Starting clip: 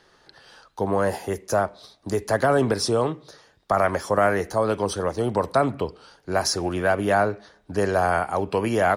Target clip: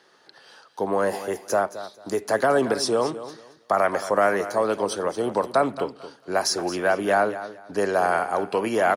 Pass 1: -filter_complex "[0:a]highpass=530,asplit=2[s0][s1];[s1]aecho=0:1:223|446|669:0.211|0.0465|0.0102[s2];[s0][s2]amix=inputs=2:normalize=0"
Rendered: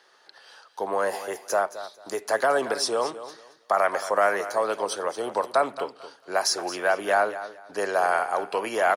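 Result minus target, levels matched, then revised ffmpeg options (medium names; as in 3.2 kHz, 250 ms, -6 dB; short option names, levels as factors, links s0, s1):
250 Hz band -7.0 dB
-filter_complex "[0:a]highpass=230,asplit=2[s0][s1];[s1]aecho=0:1:223|446|669:0.211|0.0465|0.0102[s2];[s0][s2]amix=inputs=2:normalize=0"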